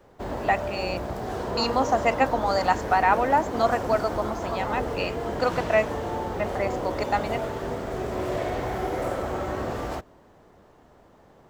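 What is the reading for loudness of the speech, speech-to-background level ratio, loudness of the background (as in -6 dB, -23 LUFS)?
-26.0 LUFS, 4.5 dB, -30.5 LUFS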